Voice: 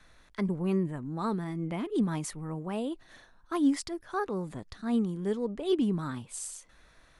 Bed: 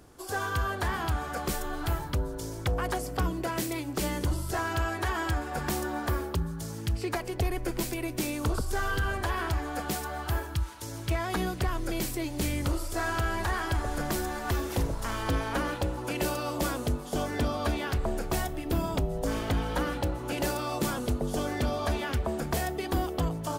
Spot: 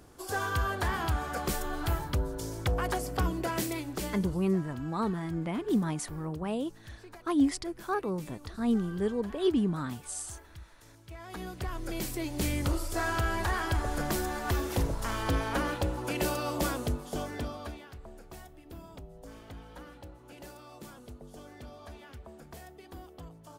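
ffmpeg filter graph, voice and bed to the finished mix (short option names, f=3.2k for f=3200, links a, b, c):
-filter_complex "[0:a]adelay=3750,volume=0.5dB[a];[1:a]volume=17.5dB,afade=t=out:st=3.63:d=0.84:silence=0.125893,afade=t=in:st=11.1:d=1.38:silence=0.125893,afade=t=out:st=16.64:d=1.23:silence=0.133352[b];[a][b]amix=inputs=2:normalize=0"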